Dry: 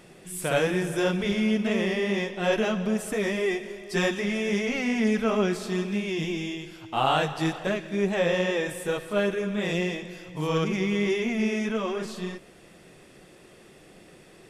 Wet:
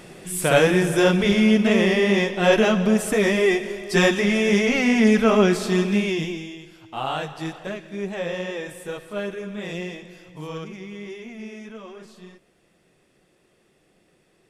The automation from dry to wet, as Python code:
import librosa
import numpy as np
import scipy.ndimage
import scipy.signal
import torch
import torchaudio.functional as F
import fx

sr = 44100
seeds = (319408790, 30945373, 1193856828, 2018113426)

y = fx.gain(x, sr, db=fx.line((6.04, 7.5), (6.48, -4.0), (10.3, -4.0), (10.78, -11.0)))